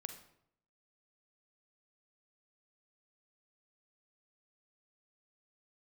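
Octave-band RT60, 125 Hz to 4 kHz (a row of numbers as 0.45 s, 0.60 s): 0.85 s, 0.80 s, 0.75 s, 0.70 s, 0.60 s, 0.50 s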